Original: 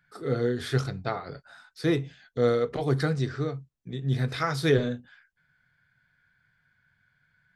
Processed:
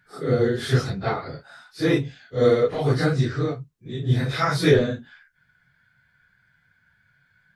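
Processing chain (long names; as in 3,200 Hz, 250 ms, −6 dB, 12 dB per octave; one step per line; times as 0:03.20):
random phases in long frames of 100 ms
level +5.5 dB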